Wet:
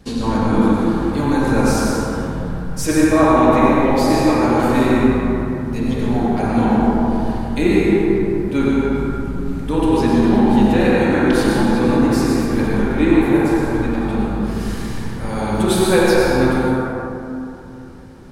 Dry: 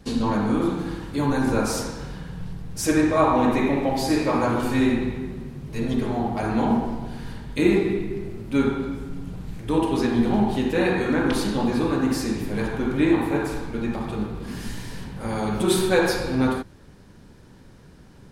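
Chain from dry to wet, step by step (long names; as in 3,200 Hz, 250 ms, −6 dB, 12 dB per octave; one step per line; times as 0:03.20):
dense smooth reverb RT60 3 s, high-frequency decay 0.35×, pre-delay 80 ms, DRR −2.5 dB
level +2 dB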